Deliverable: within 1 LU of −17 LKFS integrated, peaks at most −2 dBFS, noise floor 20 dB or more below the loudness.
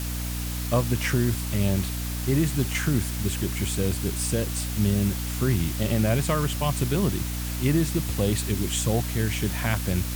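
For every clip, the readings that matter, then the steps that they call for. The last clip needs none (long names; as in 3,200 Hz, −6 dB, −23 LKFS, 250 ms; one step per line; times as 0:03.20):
mains hum 60 Hz; hum harmonics up to 300 Hz; level of the hum −28 dBFS; background noise floor −30 dBFS; target noise floor −46 dBFS; integrated loudness −25.5 LKFS; sample peak −9.0 dBFS; target loudness −17.0 LKFS
→ hum removal 60 Hz, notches 5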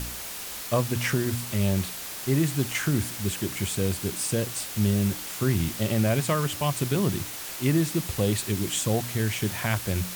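mains hum none found; background noise floor −37 dBFS; target noise floor −47 dBFS
→ broadband denoise 10 dB, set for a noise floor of −37 dBFS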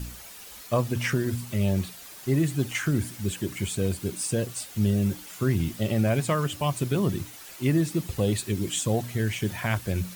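background noise floor −45 dBFS; target noise floor −47 dBFS
→ broadband denoise 6 dB, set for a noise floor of −45 dBFS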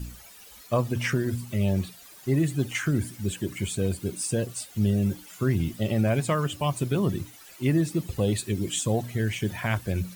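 background noise floor −49 dBFS; integrated loudness −27.5 LKFS; sample peak −11.5 dBFS; target loudness −17.0 LKFS
→ level +10.5 dB
brickwall limiter −2 dBFS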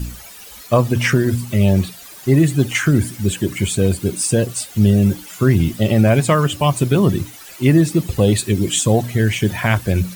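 integrated loudness −17.0 LKFS; sample peak −2.0 dBFS; background noise floor −39 dBFS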